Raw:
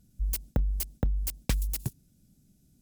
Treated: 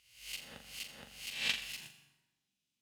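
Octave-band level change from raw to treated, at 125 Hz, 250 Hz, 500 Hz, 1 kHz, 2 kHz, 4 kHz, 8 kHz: -30.0 dB, -20.0 dB, -14.0 dB, -7.0 dB, +7.0 dB, +6.5 dB, -8.0 dB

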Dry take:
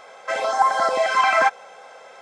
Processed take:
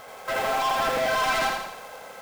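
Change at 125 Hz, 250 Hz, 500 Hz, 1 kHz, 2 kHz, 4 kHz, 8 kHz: no reading, +4.5 dB, -4.0 dB, -6.0 dB, -4.5 dB, +0.5 dB, +0.5 dB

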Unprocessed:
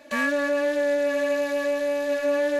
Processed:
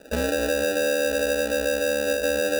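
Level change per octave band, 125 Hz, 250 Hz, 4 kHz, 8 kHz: no reading, -1.0 dB, +7.5 dB, +11.5 dB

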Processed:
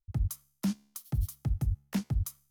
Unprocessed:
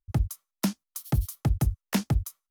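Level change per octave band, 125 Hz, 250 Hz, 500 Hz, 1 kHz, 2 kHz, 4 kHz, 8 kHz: -4.5 dB, -4.5 dB, -11.5 dB, -11.5 dB, -10.5 dB, -9.0 dB, -6.0 dB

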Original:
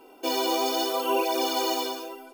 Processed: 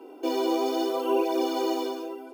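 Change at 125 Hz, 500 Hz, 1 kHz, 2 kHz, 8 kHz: no reading, +1.5 dB, -3.0 dB, -6.5 dB, -10.0 dB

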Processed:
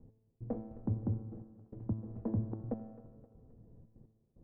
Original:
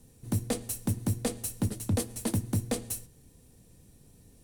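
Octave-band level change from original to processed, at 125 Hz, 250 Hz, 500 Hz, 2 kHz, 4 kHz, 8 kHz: -6.5 dB, -6.5 dB, -8.5 dB, under -25 dB, under -40 dB, under -40 dB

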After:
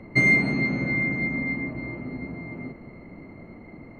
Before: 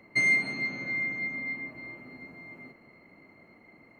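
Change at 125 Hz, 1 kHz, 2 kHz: +18.0 dB, +8.5 dB, +4.0 dB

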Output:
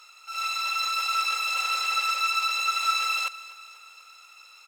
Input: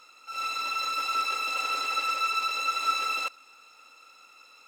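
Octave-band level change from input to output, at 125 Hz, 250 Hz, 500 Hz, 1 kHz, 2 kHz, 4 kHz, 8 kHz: no reading, under -15 dB, -6.0 dB, +1.0 dB, +3.5 dB, +4.5 dB, +5.0 dB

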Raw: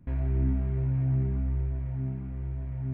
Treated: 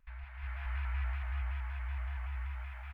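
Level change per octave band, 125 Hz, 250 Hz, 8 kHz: -12.0 dB, under -35 dB, no reading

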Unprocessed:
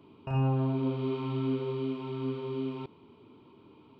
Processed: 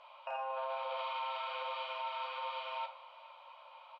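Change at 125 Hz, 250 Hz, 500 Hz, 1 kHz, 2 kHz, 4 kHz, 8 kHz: under -40 dB, under -40 dB, -9.0 dB, +5.0 dB, +5.5 dB, +5.5 dB, no reading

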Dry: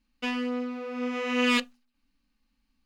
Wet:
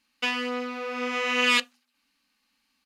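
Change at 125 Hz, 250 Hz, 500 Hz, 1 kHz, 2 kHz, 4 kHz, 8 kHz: no reading, -5.5 dB, +0.5 dB, +4.0 dB, +5.5 dB, +6.0 dB, +6.0 dB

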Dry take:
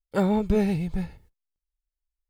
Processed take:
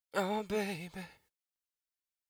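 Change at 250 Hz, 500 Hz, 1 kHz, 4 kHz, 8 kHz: -16.0 dB, -9.5 dB, -5.0 dB, -0.5 dB, no reading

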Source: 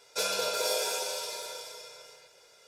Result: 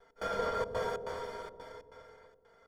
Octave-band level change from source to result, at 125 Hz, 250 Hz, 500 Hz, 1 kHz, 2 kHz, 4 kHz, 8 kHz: no reading, +4.0 dB, -2.0 dB, -0.5 dB, -5.5 dB, -17.5 dB, -24.0 dB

